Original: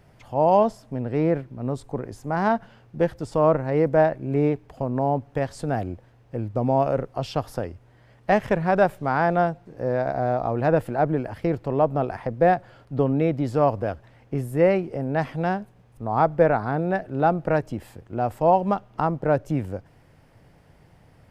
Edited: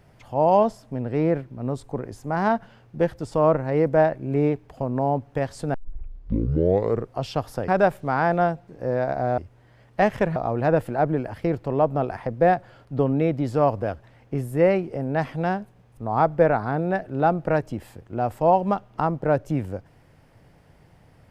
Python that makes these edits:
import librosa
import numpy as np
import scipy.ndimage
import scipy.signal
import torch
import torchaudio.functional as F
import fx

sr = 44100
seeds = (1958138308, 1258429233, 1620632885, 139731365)

y = fx.edit(x, sr, fx.tape_start(start_s=5.74, length_s=1.41),
    fx.move(start_s=7.68, length_s=0.98, to_s=10.36), tone=tone)